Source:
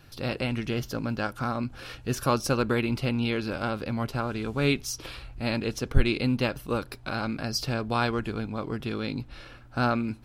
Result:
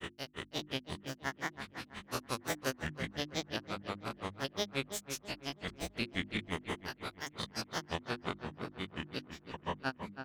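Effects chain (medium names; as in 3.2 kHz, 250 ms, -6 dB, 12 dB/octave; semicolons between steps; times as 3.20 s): spectrogram pixelated in time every 400 ms; tilt EQ +2.5 dB/octave; granulator 100 ms, grains 5.7 per s, pitch spread up and down by 7 st; hum notches 50/100/150/200/250/300/350 Hz; on a send: filtered feedback delay 329 ms, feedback 38%, low-pass 2.5 kHz, level -8 dB; on the sum: trim +1 dB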